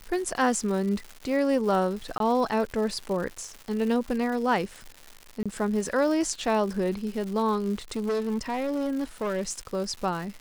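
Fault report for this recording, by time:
crackle 260 per s -34 dBFS
2.18–2.20 s: dropout 22 ms
5.43–5.46 s: dropout 26 ms
7.91–9.42 s: clipped -24 dBFS

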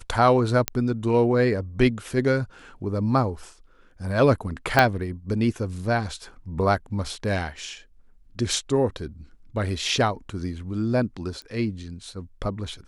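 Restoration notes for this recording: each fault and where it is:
0.68 s: pop -5 dBFS
4.79 s: pop -3 dBFS
11.42 s: pop -27 dBFS

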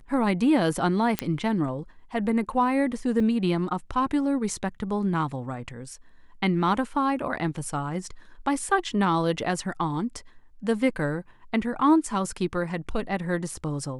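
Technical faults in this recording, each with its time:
1.19 s: pop -8 dBFS
3.20 s: dropout 3.2 ms

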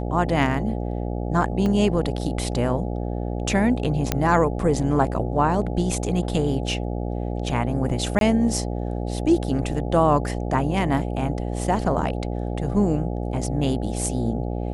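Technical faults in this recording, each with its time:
buzz 60 Hz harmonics 14 -27 dBFS
1.66 s: dropout 2.3 ms
4.12 s: pop -5 dBFS
8.19–8.21 s: dropout 22 ms

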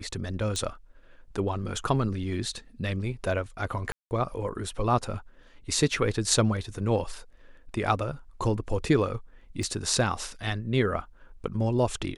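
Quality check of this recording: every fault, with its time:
0.56 s: pop
3.92–4.11 s: dropout 189 ms
9.63 s: dropout 2.4 ms

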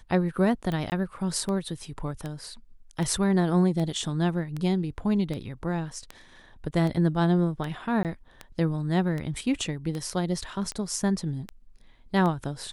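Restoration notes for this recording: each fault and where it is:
tick 78 rpm -20 dBFS
0.90–0.92 s: dropout 19 ms
8.03–8.05 s: dropout 18 ms

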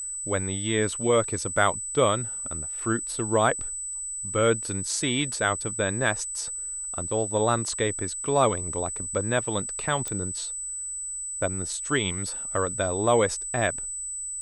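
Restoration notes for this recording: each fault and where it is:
whine 8 kHz -31 dBFS
10.08 s: pop -16 dBFS

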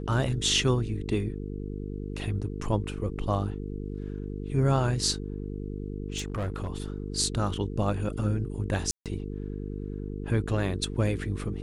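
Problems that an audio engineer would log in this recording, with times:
buzz 50 Hz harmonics 9 -35 dBFS
6.17–6.68 s: clipped -27 dBFS
8.91–9.06 s: dropout 147 ms

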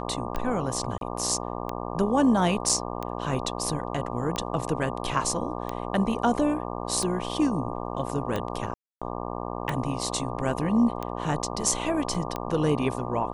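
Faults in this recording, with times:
buzz 60 Hz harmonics 20 -33 dBFS
tick 45 rpm -16 dBFS
0.98–1.01 s: dropout 32 ms
2.69 s: dropout 4.9 ms
8.74–9.02 s: dropout 276 ms
12.14 s: dropout 4.2 ms

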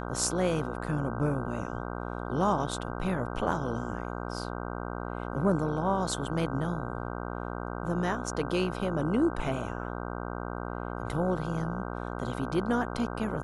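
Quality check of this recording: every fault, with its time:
buzz 60 Hz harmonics 26 -36 dBFS

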